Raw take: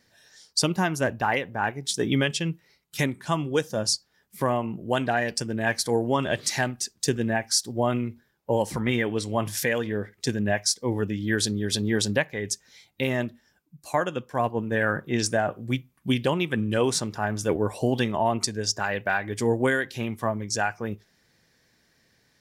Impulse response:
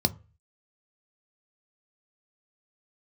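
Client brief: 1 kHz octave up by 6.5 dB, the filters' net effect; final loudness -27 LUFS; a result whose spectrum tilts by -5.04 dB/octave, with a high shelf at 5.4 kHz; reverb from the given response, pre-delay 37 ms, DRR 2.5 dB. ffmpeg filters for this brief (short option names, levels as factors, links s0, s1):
-filter_complex "[0:a]equalizer=f=1000:t=o:g=8.5,highshelf=f=5400:g=3,asplit=2[s0][s1];[1:a]atrim=start_sample=2205,adelay=37[s2];[s1][s2]afir=irnorm=-1:irlink=0,volume=0.266[s3];[s0][s3]amix=inputs=2:normalize=0,volume=0.422"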